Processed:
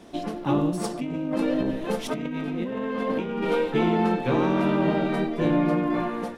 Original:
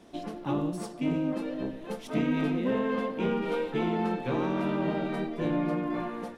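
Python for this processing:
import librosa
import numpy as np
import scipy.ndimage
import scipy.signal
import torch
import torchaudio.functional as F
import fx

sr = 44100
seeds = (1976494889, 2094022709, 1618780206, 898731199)

y = fx.over_compress(x, sr, threshold_db=-34.0, ratio=-1.0, at=(0.84, 3.5))
y = y * 10.0 ** (6.5 / 20.0)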